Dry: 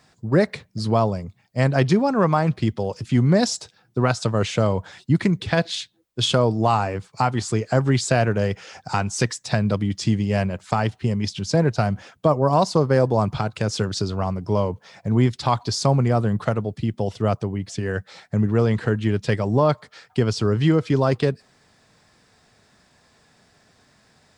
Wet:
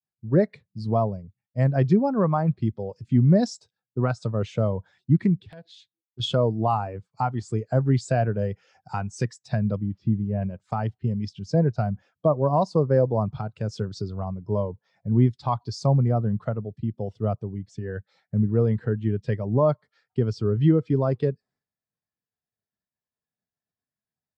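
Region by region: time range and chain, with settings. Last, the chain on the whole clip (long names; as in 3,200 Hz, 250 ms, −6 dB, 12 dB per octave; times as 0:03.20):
0:05.36–0:06.20: downward compressor 3 to 1, threshold −32 dBFS + wrap-around overflow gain 16.5 dB + highs frequency-modulated by the lows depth 0.21 ms
0:09.79–0:10.42: spike at every zero crossing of −22 dBFS + head-to-tape spacing loss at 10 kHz 37 dB
whole clip: downward expander −51 dBFS; every bin expanded away from the loudest bin 1.5 to 1; level −4 dB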